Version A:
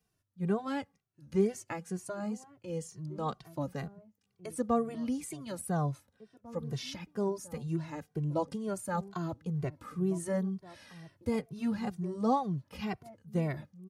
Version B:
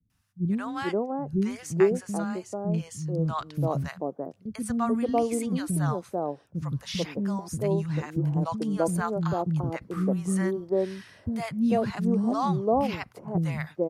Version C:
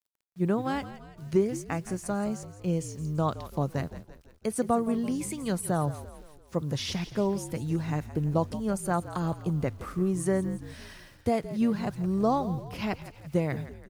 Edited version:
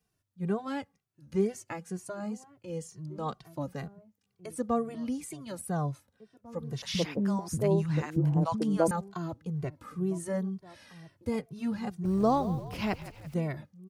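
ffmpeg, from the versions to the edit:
-filter_complex "[0:a]asplit=3[s0][s1][s2];[s0]atrim=end=6.822[s3];[1:a]atrim=start=6.818:end=8.912[s4];[s1]atrim=start=8.908:end=12.052[s5];[2:a]atrim=start=12.048:end=13.342[s6];[s2]atrim=start=13.338[s7];[s3][s4]acrossfade=d=0.004:c1=hsin:c2=hsin[s8];[s8][s5]acrossfade=d=0.004:c1=hsin:c2=hsin[s9];[s9][s6]acrossfade=d=0.004:c1=hsin:c2=hsin[s10];[s10][s7]acrossfade=d=0.004:c1=hsin:c2=hsin"

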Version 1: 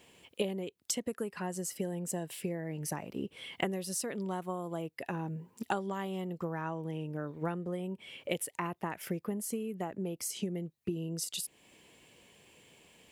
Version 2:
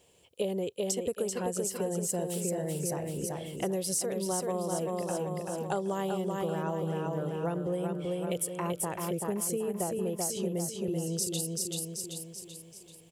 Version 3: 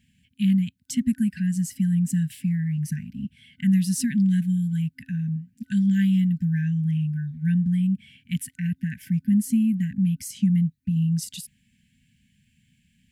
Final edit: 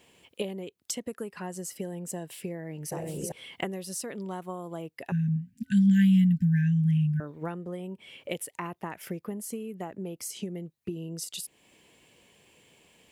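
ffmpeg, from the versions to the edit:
-filter_complex "[0:a]asplit=3[s0][s1][s2];[s0]atrim=end=2.922[s3];[1:a]atrim=start=2.918:end=3.322[s4];[s1]atrim=start=3.318:end=5.122[s5];[2:a]atrim=start=5.118:end=7.202[s6];[s2]atrim=start=7.198[s7];[s3][s4]acrossfade=d=0.004:c1=hsin:c2=hsin[s8];[s8][s5]acrossfade=d=0.004:c1=hsin:c2=hsin[s9];[s9][s6]acrossfade=d=0.004:c1=hsin:c2=hsin[s10];[s10][s7]acrossfade=d=0.004:c1=hsin:c2=hsin"

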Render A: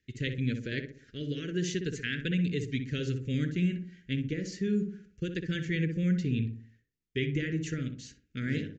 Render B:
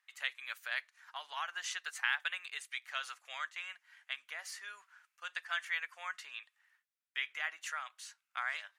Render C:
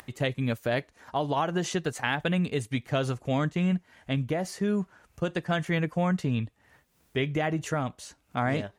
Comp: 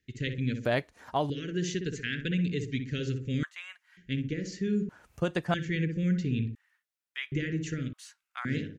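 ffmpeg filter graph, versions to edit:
-filter_complex "[2:a]asplit=2[s0][s1];[1:a]asplit=3[s2][s3][s4];[0:a]asplit=6[s5][s6][s7][s8][s9][s10];[s5]atrim=end=0.652[s11];[s0]atrim=start=0.648:end=1.302[s12];[s6]atrim=start=1.298:end=3.432[s13];[s2]atrim=start=3.428:end=3.972[s14];[s7]atrim=start=3.968:end=4.892[s15];[s1]atrim=start=4.888:end=5.542[s16];[s8]atrim=start=5.538:end=6.552[s17];[s3]atrim=start=6.548:end=7.322[s18];[s9]atrim=start=7.318:end=7.932[s19];[s4]atrim=start=7.928:end=8.452[s20];[s10]atrim=start=8.448[s21];[s11][s12]acrossfade=d=0.004:c1=hsin:c2=hsin[s22];[s22][s13]acrossfade=d=0.004:c1=hsin:c2=hsin[s23];[s23][s14]acrossfade=d=0.004:c1=hsin:c2=hsin[s24];[s24][s15]acrossfade=d=0.004:c1=hsin:c2=hsin[s25];[s25][s16]acrossfade=d=0.004:c1=hsin:c2=hsin[s26];[s26][s17]acrossfade=d=0.004:c1=hsin:c2=hsin[s27];[s27][s18]acrossfade=d=0.004:c1=hsin:c2=hsin[s28];[s28][s19]acrossfade=d=0.004:c1=hsin:c2=hsin[s29];[s29][s20]acrossfade=d=0.004:c1=hsin:c2=hsin[s30];[s30][s21]acrossfade=d=0.004:c1=hsin:c2=hsin"

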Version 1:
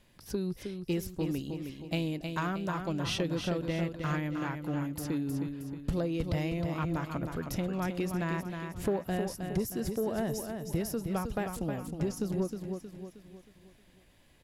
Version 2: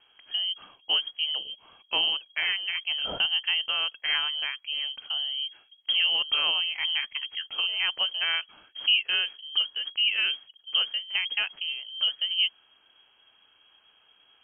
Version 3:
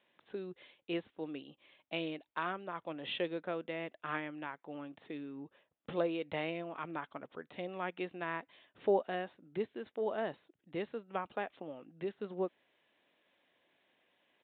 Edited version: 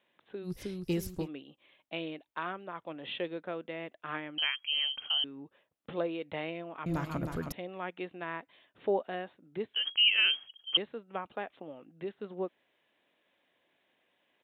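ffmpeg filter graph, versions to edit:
-filter_complex "[0:a]asplit=2[s0][s1];[1:a]asplit=2[s2][s3];[2:a]asplit=5[s4][s5][s6][s7][s8];[s4]atrim=end=0.52[s9];[s0]atrim=start=0.42:end=1.29[s10];[s5]atrim=start=1.19:end=4.382[s11];[s2]atrim=start=4.378:end=5.242[s12];[s6]atrim=start=5.238:end=6.862[s13];[s1]atrim=start=6.858:end=7.522[s14];[s7]atrim=start=7.518:end=9.742[s15];[s3]atrim=start=9.738:end=10.772[s16];[s8]atrim=start=10.768[s17];[s9][s10]acrossfade=d=0.1:c1=tri:c2=tri[s18];[s18][s11]acrossfade=d=0.1:c1=tri:c2=tri[s19];[s19][s12]acrossfade=d=0.004:c1=hsin:c2=hsin[s20];[s20][s13]acrossfade=d=0.004:c1=hsin:c2=hsin[s21];[s21][s14]acrossfade=d=0.004:c1=hsin:c2=hsin[s22];[s22][s15]acrossfade=d=0.004:c1=hsin:c2=hsin[s23];[s23][s16]acrossfade=d=0.004:c1=hsin:c2=hsin[s24];[s24][s17]acrossfade=d=0.004:c1=hsin:c2=hsin"

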